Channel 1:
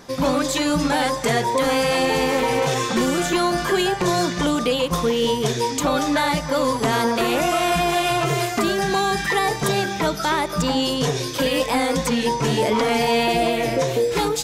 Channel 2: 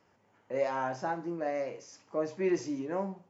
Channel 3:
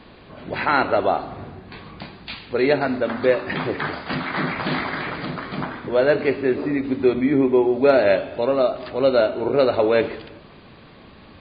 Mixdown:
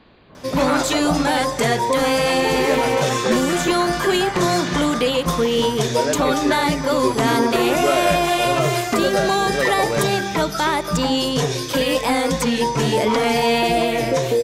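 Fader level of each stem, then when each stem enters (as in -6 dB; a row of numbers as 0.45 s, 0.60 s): +1.5 dB, -5.5 dB, -5.5 dB; 0.35 s, 0.00 s, 0.00 s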